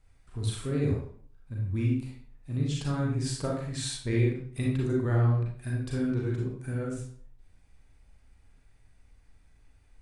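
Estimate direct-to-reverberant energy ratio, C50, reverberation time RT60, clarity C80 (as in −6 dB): −3.5 dB, 1.0 dB, 0.50 s, 6.5 dB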